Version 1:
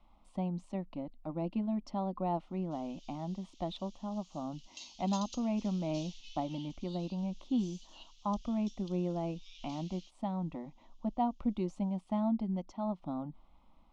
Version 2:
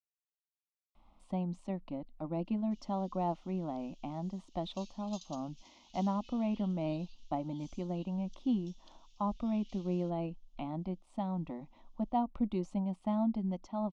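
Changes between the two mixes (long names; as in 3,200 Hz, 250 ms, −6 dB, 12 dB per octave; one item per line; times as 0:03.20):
speech: entry +0.95 s
background −7.0 dB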